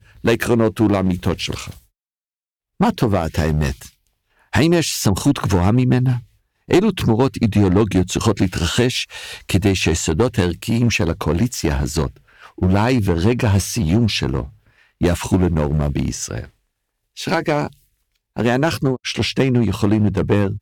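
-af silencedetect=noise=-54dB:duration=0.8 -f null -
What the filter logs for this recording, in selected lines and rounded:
silence_start: 1.88
silence_end: 2.80 | silence_duration: 0.92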